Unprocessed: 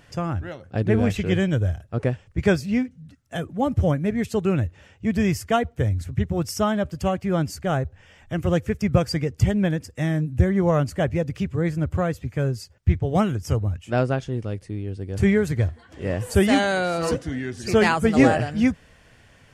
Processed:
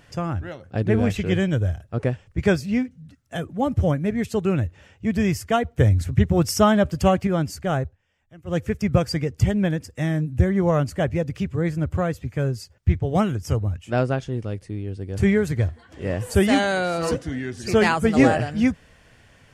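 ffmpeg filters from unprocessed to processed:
ffmpeg -i in.wav -filter_complex "[0:a]asplit=5[link_01][link_02][link_03][link_04][link_05];[link_01]atrim=end=5.782[link_06];[link_02]atrim=start=5.778:end=7.272,asetpts=PTS-STARTPTS,volume=5.5dB[link_07];[link_03]atrim=start=7.268:end=7.97,asetpts=PTS-STARTPTS,afade=type=out:start_time=0.562:duration=0.14:silence=0.1[link_08];[link_04]atrim=start=7.97:end=8.45,asetpts=PTS-STARTPTS,volume=-20dB[link_09];[link_05]atrim=start=8.45,asetpts=PTS-STARTPTS,afade=type=in:duration=0.14:silence=0.1[link_10];[link_06][link_07]acrossfade=duration=0.004:curve1=hsin:curve2=hsin[link_11];[link_08][link_09][link_10]concat=n=3:v=0:a=1[link_12];[link_11][link_12]acrossfade=duration=0.004:curve1=hsin:curve2=hsin" out.wav

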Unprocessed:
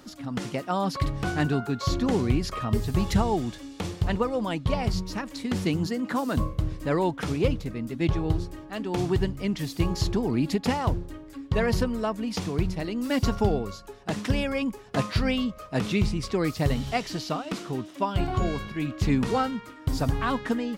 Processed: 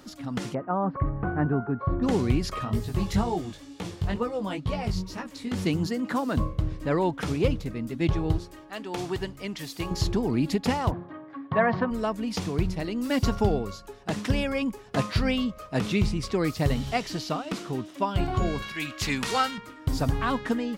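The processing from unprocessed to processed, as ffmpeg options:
ffmpeg -i in.wav -filter_complex "[0:a]asplit=3[link_01][link_02][link_03];[link_01]afade=type=out:start_time=0.53:duration=0.02[link_04];[link_02]lowpass=frequency=1500:width=0.5412,lowpass=frequency=1500:width=1.3066,afade=type=in:start_time=0.53:duration=0.02,afade=type=out:start_time=2.02:duration=0.02[link_05];[link_03]afade=type=in:start_time=2.02:duration=0.02[link_06];[link_04][link_05][link_06]amix=inputs=3:normalize=0,asplit=3[link_07][link_08][link_09];[link_07]afade=type=out:start_time=2.64:duration=0.02[link_10];[link_08]flanger=delay=16.5:depth=4.8:speed=2.1,afade=type=in:start_time=2.64:duration=0.02,afade=type=out:start_time=5.57:duration=0.02[link_11];[link_09]afade=type=in:start_time=5.57:duration=0.02[link_12];[link_10][link_11][link_12]amix=inputs=3:normalize=0,asettb=1/sr,asplit=3[link_13][link_14][link_15];[link_13]atrim=end=6.184[link_16];[link_14]atrim=start=6.18:end=7.13,asetpts=PTS-STARTPTS,afade=type=in:duration=0.004:curve=qsin,afade=type=out:start_time=0.946:duration=0.004:curve=qsin,highshelf=frequency=6500:gain=-8[link_17];[link_15]atrim=start=7.126[link_18];[link_16][link_17]acrossfade=duration=0.004:curve1=hsin:curve2=qsin[link_19];[link_19][link_18]acrossfade=duration=0.004:curve1=qsin:curve2=hsin,asettb=1/sr,asplit=3[link_20][link_21][link_22];[link_20]atrim=end=8.384[link_23];[link_21]atrim=start=8.38:end=9.91,asetpts=PTS-STARTPTS,afade=type=in:duration=0.004:curve=qsin,afade=type=out:start_time=1.526:duration=0.004:curve=qsin,lowshelf=frequency=300:gain=-12[link_24];[link_22]atrim=start=9.906[link_25];[link_23][link_24]acrossfade=duration=0.004:curve1=hsin:curve2=qsin[link_26];[link_26][link_25]acrossfade=duration=0.004:curve1=qsin:curve2=hsin,asplit=3[link_27][link_28][link_29];[link_27]afade=type=out:start_time=10.9:duration=0.02[link_30];[link_28]highpass=frequency=130:width=0.5412,highpass=frequency=130:width=1.3066,equalizer=frequency=430:width_type=q:width=4:gain=-6,equalizer=frequency=710:width_type=q:width=4:gain=10,equalizer=frequency=1100:width_type=q:width=4:gain=10,equalizer=frequency=1700:width_type=q:width=4:gain=5,equalizer=frequency=2700:width_type=q:width=4:gain=-6,lowpass=frequency=3000:width=0.5412,lowpass=frequency=3000:width=1.3066,afade=type=in:start_time=10.9:duration=0.02,afade=type=out:start_time=11.9:duration=0.02[link_31];[link_29]afade=type=in:start_time=11.9:duration=0.02[link_32];[link_30][link_31][link_32]amix=inputs=3:normalize=0,asettb=1/sr,asplit=3[link_33][link_34][link_35];[link_33]atrim=end=18.624[link_36];[link_34]atrim=start=18.62:end=19.58,asetpts=PTS-STARTPTS,afade=type=in:duration=0.004:curve=qsin,afade=type=out:start_time=0.956:duration=0.004:curve=qsin,tiltshelf=frequency=820:gain=-9.5[link_37];[link_35]atrim=start=19.576[link_38];[link_36][link_37]acrossfade=duration=0.004:curve1=hsin:curve2=qsin[link_39];[link_39][link_38]acrossfade=duration=0.004:curve1=qsin:curve2=hsin" out.wav

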